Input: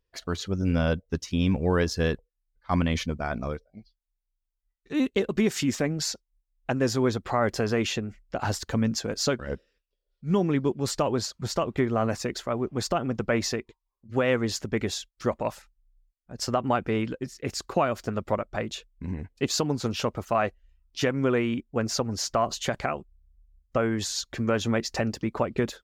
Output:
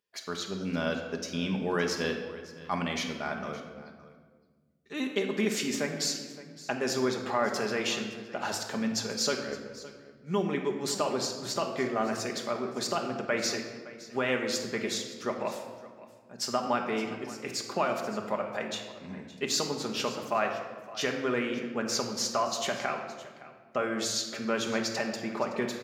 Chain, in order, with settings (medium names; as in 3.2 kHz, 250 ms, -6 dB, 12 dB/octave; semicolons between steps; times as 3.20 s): high-pass 190 Hz 12 dB/octave; tilt shelf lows -3.5 dB, about 680 Hz; on a send: delay 565 ms -18 dB; on the sum: simulated room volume 1300 m³, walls mixed, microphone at 1.3 m; trim -5 dB